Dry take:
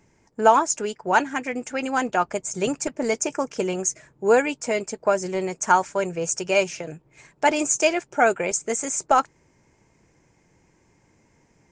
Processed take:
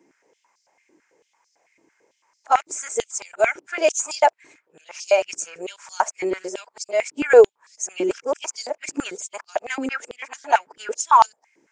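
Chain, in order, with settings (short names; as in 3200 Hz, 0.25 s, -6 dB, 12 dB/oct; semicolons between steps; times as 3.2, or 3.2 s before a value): whole clip reversed; stepped high-pass 9 Hz 310–4800 Hz; gain -3.5 dB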